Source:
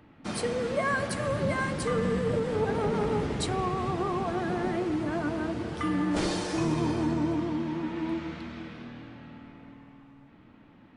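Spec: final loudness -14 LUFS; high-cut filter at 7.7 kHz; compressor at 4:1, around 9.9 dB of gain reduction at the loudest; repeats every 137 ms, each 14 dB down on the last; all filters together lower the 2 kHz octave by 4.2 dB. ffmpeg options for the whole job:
-af "lowpass=7700,equalizer=f=2000:t=o:g=-5.5,acompressor=threshold=0.0158:ratio=4,aecho=1:1:137|274:0.2|0.0399,volume=16.8"

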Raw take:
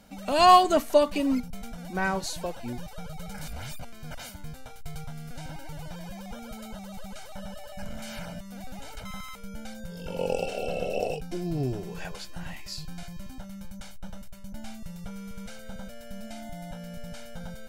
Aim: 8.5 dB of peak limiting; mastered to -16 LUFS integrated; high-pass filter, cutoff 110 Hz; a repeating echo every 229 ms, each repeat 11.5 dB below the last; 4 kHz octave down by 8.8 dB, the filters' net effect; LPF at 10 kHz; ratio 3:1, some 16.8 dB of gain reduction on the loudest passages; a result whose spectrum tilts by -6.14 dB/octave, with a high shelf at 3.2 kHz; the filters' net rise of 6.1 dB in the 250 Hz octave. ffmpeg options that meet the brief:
-af "highpass=110,lowpass=10000,equalizer=f=250:t=o:g=8,highshelf=f=3200:g=-9,equalizer=f=4000:t=o:g=-5.5,acompressor=threshold=0.0158:ratio=3,alimiter=level_in=2.11:limit=0.0631:level=0:latency=1,volume=0.473,aecho=1:1:229|458|687:0.266|0.0718|0.0194,volume=16.8"

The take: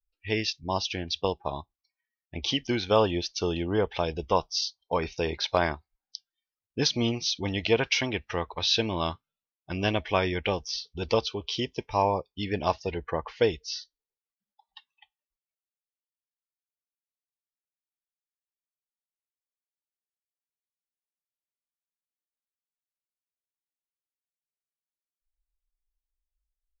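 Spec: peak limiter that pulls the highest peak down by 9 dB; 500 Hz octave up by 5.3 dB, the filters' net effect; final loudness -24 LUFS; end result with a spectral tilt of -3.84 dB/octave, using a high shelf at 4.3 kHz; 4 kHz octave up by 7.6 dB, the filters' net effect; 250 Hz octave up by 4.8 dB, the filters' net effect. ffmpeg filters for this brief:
-af "equalizer=f=250:t=o:g=4.5,equalizer=f=500:t=o:g=5,equalizer=f=4000:t=o:g=7.5,highshelf=f=4300:g=3,volume=1.19,alimiter=limit=0.282:level=0:latency=1"

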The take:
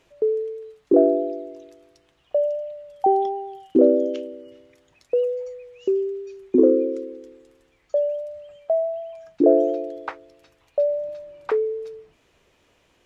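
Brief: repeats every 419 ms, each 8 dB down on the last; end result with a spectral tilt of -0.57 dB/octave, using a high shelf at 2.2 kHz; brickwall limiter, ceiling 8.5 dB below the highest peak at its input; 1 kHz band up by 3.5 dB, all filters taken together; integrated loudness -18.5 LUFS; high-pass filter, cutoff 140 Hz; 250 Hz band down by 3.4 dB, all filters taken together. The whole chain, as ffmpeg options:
-af "highpass=140,equalizer=f=250:t=o:g=-5,equalizer=f=1000:t=o:g=7.5,highshelf=f=2200:g=-8,alimiter=limit=0.237:level=0:latency=1,aecho=1:1:419|838|1257|1676|2095:0.398|0.159|0.0637|0.0255|0.0102,volume=2.11"

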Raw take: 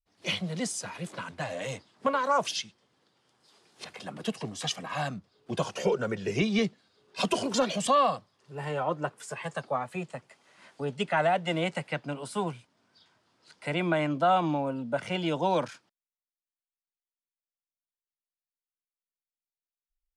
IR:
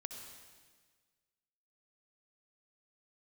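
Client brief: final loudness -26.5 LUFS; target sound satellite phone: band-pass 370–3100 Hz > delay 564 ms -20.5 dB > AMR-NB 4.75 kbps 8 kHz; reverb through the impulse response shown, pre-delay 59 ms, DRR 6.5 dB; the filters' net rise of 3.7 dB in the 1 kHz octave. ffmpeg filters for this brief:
-filter_complex "[0:a]equalizer=f=1000:t=o:g=5,asplit=2[s0][s1];[1:a]atrim=start_sample=2205,adelay=59[s2];[s1][s2]afir=irnorm=-1:irlink=0,volume=0.631[s3];[s0][s3]amix=inputs=2:normalize=0,highpass=370,lowpass=3100,aecho=1:1:564:0.0944,volume=1.41" -ar 8000 -c:a libopencore_amrnb -b:a 4750

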